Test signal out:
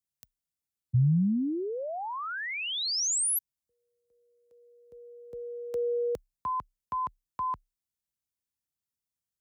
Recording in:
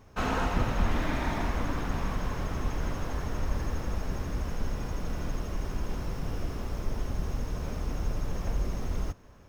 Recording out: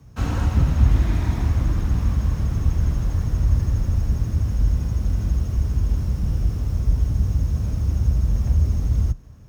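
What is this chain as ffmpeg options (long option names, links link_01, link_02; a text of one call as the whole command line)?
ffmpeg -i in.wav -af "afreqshift=32,bass=frequency=250:gain=15,treble=frequency=4000:gain=8,volume=-4dB" out.wav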